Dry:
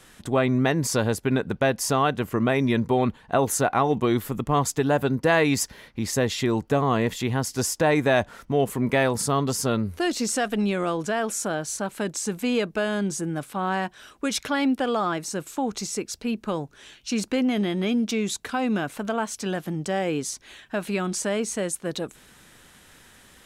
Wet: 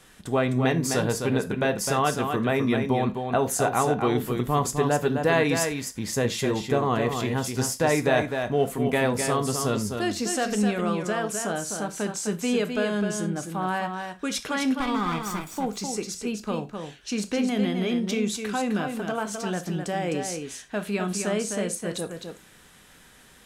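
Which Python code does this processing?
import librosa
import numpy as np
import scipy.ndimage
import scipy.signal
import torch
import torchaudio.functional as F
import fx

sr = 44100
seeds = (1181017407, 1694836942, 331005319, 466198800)

y = fx.lower_of_two(x, sr, delay_ms=0.86, at=(14.8, 15.56))
y = y + 10.0 ** (-6.0 / 20.0) * np.pad(y, (int(257 * sr / 1000.0), 0))[:len(y)]
y = fx.rev_gated(y, sr, seeds[0], gate_ms=120, shape='falling', drr_db=9.0)
y = y * 10.0 ** (-2.5 / 20.0)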